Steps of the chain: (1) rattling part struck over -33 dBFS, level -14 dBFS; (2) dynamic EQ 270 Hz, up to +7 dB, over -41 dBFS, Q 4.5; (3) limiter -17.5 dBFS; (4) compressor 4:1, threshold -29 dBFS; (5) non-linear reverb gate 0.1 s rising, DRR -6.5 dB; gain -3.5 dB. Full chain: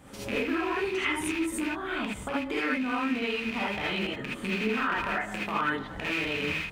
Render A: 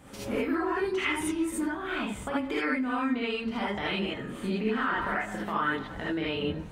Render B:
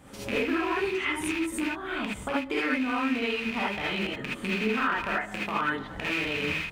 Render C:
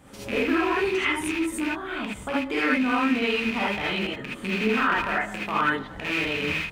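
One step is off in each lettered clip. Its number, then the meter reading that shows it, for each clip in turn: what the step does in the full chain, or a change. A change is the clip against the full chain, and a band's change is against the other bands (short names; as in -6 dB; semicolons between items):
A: 1, 2 kHz band -3.0 dB; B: 3, mean gain reduction 3.0 dB; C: 4, mean gain reduction 3.0 dB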